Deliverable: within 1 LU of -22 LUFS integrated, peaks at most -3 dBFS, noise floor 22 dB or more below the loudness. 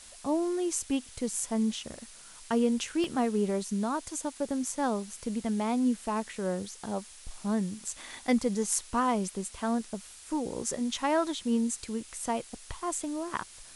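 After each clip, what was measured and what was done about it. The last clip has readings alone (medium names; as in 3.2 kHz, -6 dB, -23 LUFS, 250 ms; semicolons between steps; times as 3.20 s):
dropouts 1; longest dropout 1.7 ms; noise floor -50 dBFS; noise floor target -54 dBFS; loudness -31.5 LUFS; peak level -13.0 dBFS; loudness target -22.0 LUFS
-> interpolate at 3.04 s, 1.7 ms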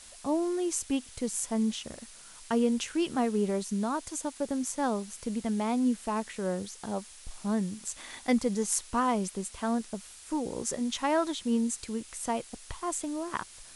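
dropouts 0; noise floor -50 dBFS; noise floor target -54 dBFS
-> noise reduction 6 dB, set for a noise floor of -50 dBFS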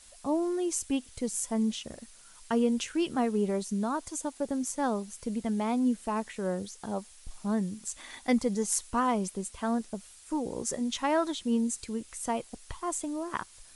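noise floor -54 dBFS; loudness -31.5 LUFS; peak level -13.5 dBFS; loudness target -22.0 LUFS
-> trim +9.5 dB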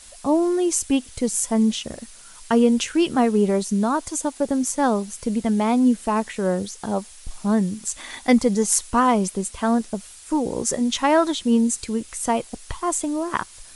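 loudness -22.0 LUFS; peak level -4.0 dBFS; noise floor -45 dBFS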